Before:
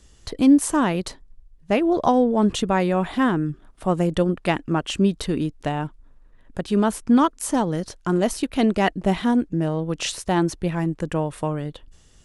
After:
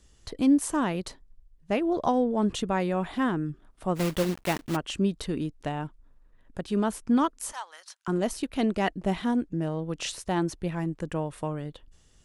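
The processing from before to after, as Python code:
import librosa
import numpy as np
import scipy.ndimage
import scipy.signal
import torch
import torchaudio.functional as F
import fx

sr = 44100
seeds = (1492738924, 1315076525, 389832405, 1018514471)

y = fx.block_float(x, sr, bits=3, at=(3.95, 4.75), fade=0.02)
y = fx.highpass(y, sr, hz=980.0, slope=24, at=(7.52, 8.08))
y = y * librosa.db_to_amplitude(-6.5)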